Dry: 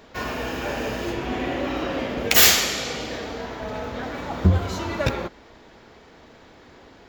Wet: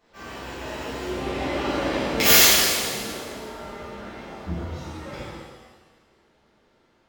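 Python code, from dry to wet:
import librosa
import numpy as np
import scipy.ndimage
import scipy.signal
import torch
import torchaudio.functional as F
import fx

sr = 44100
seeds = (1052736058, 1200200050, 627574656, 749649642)

y = fx.doppler_pass(x, sr, speed_mps=25, closest_m=16.0, pass_at_s=2.0)
y = fx.rev_shimmer(y, sr, seeds[0], rt60_s=1.2, semitones=7, shimmer_db=-8, drr_db=-11.0)
y = F.gain(torch.from_numpy(y), -9.5).numpy()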